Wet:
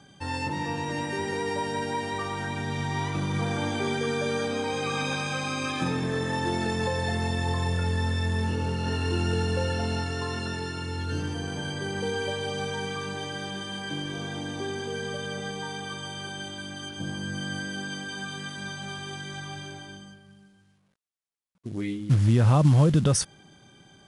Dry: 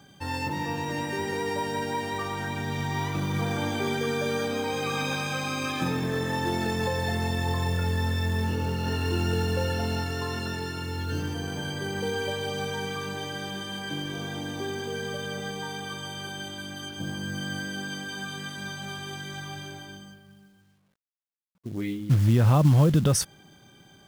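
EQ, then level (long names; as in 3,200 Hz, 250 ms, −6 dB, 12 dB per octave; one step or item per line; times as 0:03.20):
linear-phase brick-wall low-pass 11,000 Hz
0.0 dB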